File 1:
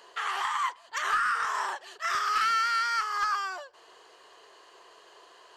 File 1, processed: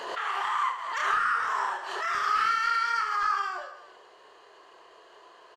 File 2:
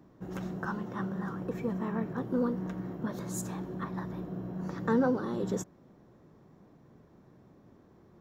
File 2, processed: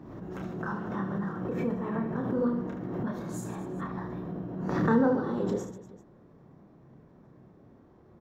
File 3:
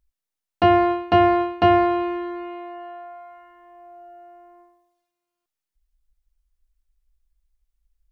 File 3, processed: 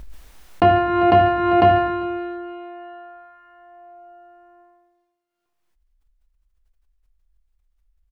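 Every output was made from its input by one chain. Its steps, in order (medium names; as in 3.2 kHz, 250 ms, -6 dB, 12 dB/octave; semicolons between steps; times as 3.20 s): treble shelf 3.6 kHz -11 dB; reverse bouncing-ball echo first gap 30 ms, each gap 1.5×, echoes 5; swell ahead of each attack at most 39 dB/s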